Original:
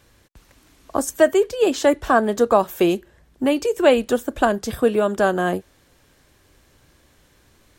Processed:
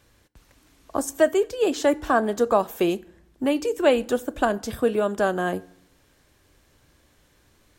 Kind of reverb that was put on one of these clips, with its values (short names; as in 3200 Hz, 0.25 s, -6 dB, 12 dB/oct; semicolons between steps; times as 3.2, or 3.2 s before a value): FDN reverb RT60 0.68 s, low-frequency decay 1.4×, high-frequency decay 0.75×, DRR 18.5 dB; gain -4 dB